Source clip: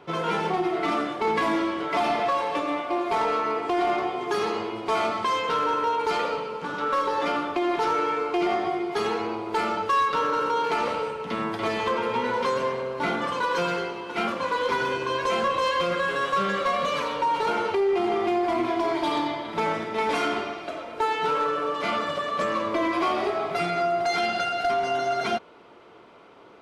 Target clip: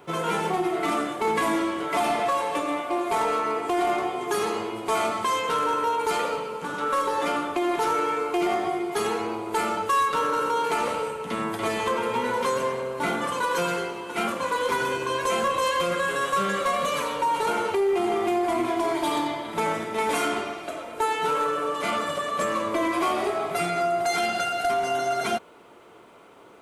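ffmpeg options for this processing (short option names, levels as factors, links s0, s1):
-af "aexciter=amount=5.1:drive=5.2:freq=7000"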